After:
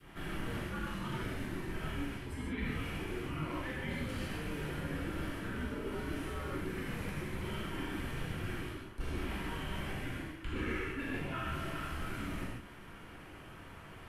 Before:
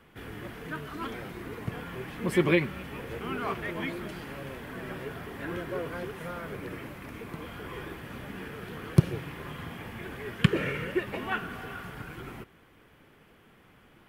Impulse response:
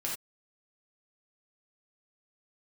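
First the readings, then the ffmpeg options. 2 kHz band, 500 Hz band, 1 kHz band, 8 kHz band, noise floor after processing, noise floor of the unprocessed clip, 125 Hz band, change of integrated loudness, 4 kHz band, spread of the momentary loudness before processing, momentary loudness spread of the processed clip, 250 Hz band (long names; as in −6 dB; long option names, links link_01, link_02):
−5.5 dB, −8.5 dB, −4.5 dB, −1.5 dB, −51 dBFS, −59 dBFS, −6.5 dB, −6.0 dB, −4.0 dB, 15 LU, 6 LU, −6.0 dB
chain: -filter_complex "[0:a]afreqshift=-100,areverse,acompressor=threshold=-41dB:ratio=8,areverse,adynamicequalizer=threshold=0.00112:dfrequency=940:dqfactor=0.89:tfrequency=940:tqfactor=0.89:attack=5:release=100:ratio=0.375:range=3:mode=cutabove:tftype=bell[link_01];[1:a]atrim=start_sample=2205,asetrate=25137,aresample=44100[link_02];[link_01][link_02]afir=irnorm=-1:irlink=0"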